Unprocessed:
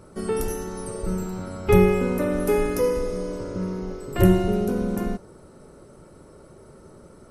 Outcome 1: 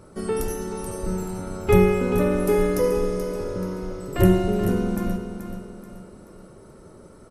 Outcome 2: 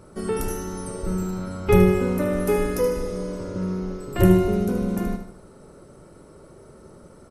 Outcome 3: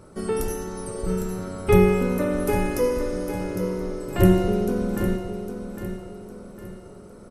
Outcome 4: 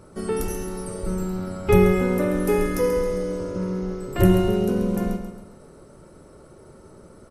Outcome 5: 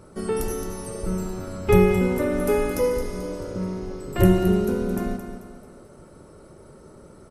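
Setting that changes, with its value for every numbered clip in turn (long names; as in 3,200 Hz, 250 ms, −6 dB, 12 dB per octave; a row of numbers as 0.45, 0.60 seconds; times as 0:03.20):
repeating echo, delay time: 431, 76, 806, 135, 219 milliseconds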